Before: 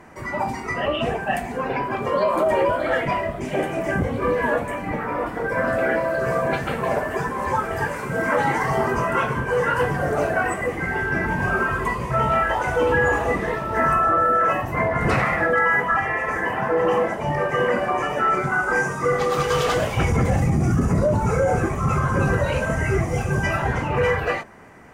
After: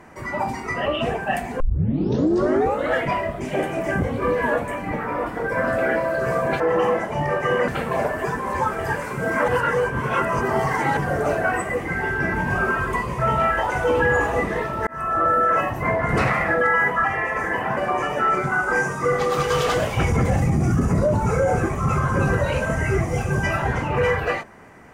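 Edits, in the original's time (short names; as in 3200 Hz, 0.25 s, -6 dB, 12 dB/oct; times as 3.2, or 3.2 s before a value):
1.6 tape start 1.35 s
8.4–9.89 reverse
13.79–14.18 fade in
16.69–17.77 move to 6.6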